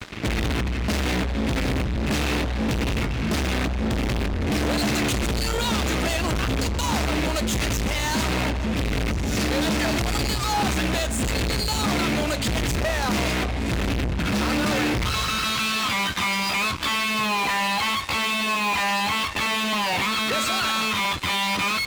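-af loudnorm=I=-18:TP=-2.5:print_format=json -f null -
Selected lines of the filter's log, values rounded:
"input_i" : "-23.2",
"input_tp" : "-15.7",
"input_lra" : "2.0",
"input_thresh" : "-33.2",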